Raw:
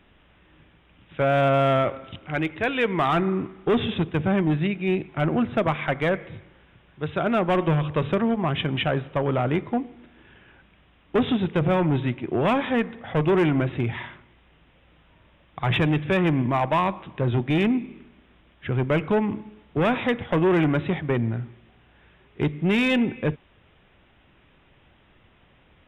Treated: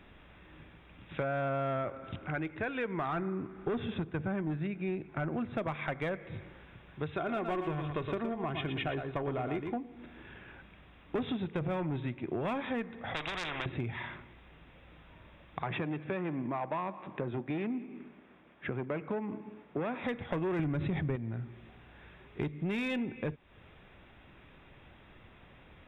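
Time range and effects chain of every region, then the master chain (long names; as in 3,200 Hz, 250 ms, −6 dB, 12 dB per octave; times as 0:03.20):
0:01.23–0:05.33: low-pass filter 2,000 Hz 6 dB per octave + parametric band 1,500 Hz +6 dB 0.25 octaves
0:07.15–0:09.76: comb filter 2.8 ms, depth 38% + single-tap delay 115 ms −7.5 dB
0:13.14–0:13.66: high-frequency loss of the air 95 metres + every bin compressed towards the loudest bin 10 to 1
0:15.62–0:20.04: high-pass filter 190 Hz + high-frequency loss of the air 350 metres + single-tap delay 182 ms −22 dB
0:20.59–0:21.16: low-shelf EQ 240 Hz +11 dB + envelope flattener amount 70%
whole clip: notch filter 3,000 Hz, Q 11; downward compressor 4 to 1, threshold −36 dBFS; level +1.5 dB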